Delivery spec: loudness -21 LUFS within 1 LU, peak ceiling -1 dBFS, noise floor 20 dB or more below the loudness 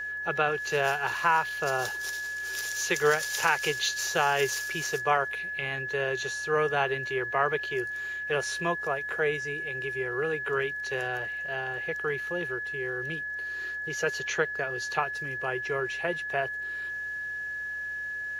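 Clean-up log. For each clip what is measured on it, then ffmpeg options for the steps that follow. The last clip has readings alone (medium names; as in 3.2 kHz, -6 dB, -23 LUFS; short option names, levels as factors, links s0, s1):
hum 60 Hz; highest harmonic 240 Hz; hum level -61 dBFS; steady tone 1.7 kHz; tone level -32 dBFS; loudness -29.0 LUFS; peak level -10.5 dBFS; loudness target -21.0 LUFS
-> -af "bandreject=f=60:t=h:w=4,bandreject=f=120:t=h:w=4,bandreject=f=180:t=h:w=4,bandreject=f=240:t=h:w=4"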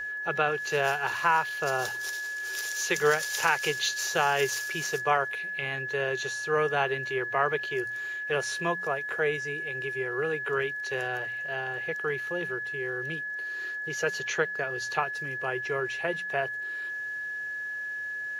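hum not found; steady tone 1.7 kHz; tone level -32 dBFS
-> -af "bandreject=f=1700:w=30"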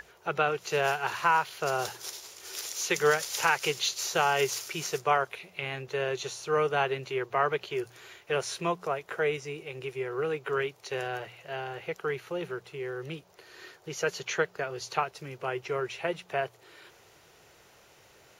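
steady tone not found; loudness -30.5 LUFS; peak level -11.0 dBFS; loudness target -21.0 LUFS
-> -af "volume=2.99"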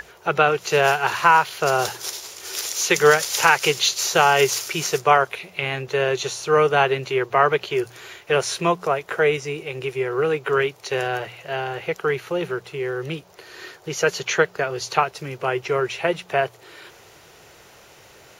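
loudness -21.0 LUFS; peak level -1.5 dBFS; noise floor -49 dBFS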